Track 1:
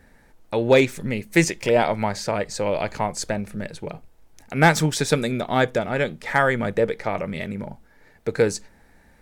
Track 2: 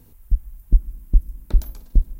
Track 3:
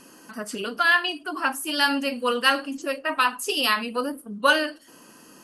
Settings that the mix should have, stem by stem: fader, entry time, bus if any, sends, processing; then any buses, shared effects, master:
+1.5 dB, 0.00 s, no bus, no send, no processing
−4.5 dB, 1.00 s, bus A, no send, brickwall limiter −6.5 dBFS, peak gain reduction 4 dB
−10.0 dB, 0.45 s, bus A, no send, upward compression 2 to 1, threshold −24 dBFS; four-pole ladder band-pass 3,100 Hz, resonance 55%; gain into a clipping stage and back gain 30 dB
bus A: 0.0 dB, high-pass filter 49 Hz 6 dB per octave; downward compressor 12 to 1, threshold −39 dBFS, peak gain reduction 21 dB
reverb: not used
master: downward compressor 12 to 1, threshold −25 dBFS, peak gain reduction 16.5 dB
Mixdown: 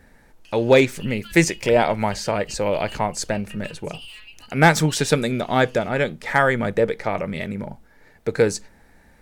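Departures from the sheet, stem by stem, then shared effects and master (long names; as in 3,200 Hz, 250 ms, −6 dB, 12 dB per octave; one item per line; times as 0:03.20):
stem 3 −10.0 dB → +1.5 dB
master: missing downward compressor 12 to 1, threshold −25 dBFS, peak gain reduction 16.5 dB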